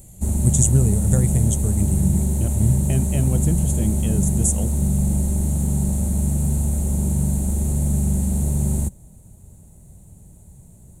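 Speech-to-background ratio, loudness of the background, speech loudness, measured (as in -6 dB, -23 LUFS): -1.0 dB, -21.5 LUFS, -22.5 LUFS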